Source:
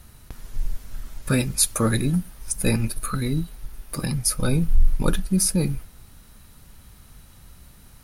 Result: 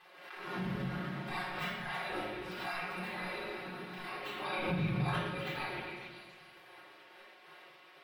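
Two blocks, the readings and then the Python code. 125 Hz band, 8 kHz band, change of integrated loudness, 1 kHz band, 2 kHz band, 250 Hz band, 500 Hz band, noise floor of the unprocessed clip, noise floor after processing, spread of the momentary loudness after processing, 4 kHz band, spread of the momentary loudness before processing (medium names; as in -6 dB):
-15.0 dB, -35.0 dB, -14.0 dB, -2.0 dB, -2.5 dB, -15.0 dB, -10.0 dB, -50 dBFS, -58 dBFS, 21 LU, -10.5 dB, 16 LU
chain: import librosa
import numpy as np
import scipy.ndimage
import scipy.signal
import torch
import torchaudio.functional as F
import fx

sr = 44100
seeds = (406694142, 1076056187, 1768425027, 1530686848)

p1 = fx.tracing_dist(x, sr, depth_ms=0.064)
p2 = fx.spec_gate(p1, sr, threshold_db=-30, keep='weak')
p3 = fx.peak_eq(p2, sr, hz=66.0, db=-5.5, octaves=0.77)
p4 = p3 + 0.97 * np.pad(p3, (int(5.5 * sr / 1000.0), 0))[:len(p3)]
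p5 = fx.rider(p4, sr, range_db=3, speed_s=0.5)
p6 = fx.air_absorb(p5, sr, metres=440.0)
p7 = p6 + fx.echo_stepped(p6, sr, ms=275, hz=2600.0, octaves=0.7, feedback_pct=70, wet_db=-5, dry=0)
p8 = fx.room_shoebox(p7, sr, seeds[0], volume_m3=710.0, walls='mixed', distance_m=3.7)
y = fx.pre_swell(p8, sr, db_per_s=52.0)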